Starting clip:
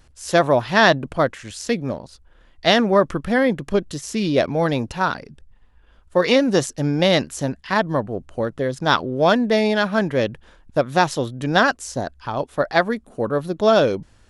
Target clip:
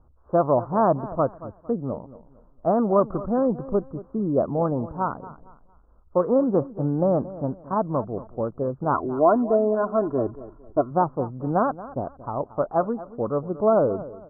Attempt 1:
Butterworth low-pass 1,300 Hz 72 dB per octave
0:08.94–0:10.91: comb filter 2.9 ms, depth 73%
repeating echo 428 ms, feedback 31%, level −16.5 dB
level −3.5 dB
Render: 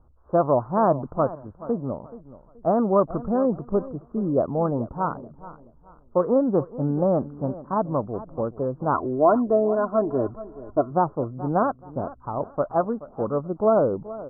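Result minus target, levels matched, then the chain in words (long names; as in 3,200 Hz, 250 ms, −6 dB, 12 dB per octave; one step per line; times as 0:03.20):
echo 200 ms late
Butterworth low-pass 1,300 Hz 72 dB per octave
0:08.94–0:10.91: comb filter 2.9 ms, depth 73%
repeating echo 228 ms, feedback 31%, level −16.5 dB
level −3.5 dB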